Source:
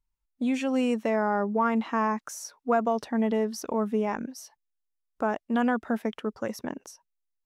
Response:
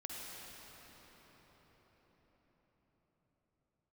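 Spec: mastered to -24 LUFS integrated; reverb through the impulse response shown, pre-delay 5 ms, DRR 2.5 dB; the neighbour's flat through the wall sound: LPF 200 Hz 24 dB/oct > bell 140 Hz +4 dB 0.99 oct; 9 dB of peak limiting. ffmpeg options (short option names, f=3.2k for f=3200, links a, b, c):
-filter_complex "[0:a]alimiter=limit=-21dB:level=0:latency=1,asplit=2[a][b];[1:a]atrim=start_sample=2205,adelay=5[c];[b][c]afir=irnorm=-1:irlink=0,volume=-2dB[d];[a][d]amix=inputs=2:normalize=0,lowpass=f=200:w=0.5412,lowpass=f=200:w=1.3066,equalizer=f=140:t=o:w=0.99:g=4,volume=13dB"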